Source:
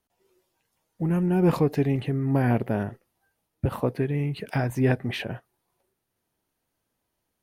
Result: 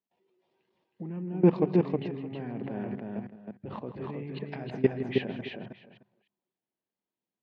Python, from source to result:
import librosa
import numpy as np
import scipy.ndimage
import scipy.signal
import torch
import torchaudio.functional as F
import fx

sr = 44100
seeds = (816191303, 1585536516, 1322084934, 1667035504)

y = fx.reverse_delay(x, sr, ms=246, wet_db=-13.0)
y = fx.hum_notches(y, sr, base_hz=50, count=4)
y = fx.level_steps(y, sr, step_db=19)
y = fx.cabinet(y, sr, low_hz=140.0, low_slope=12, high_hz=3900.0, hz=(200.0, 370.0, 1400.0), db=(8, 4, -6))
y = fx.echo_multitap(y, sr, ms=(162, 316, 618), db=(-13.5, -3.5, -19.0))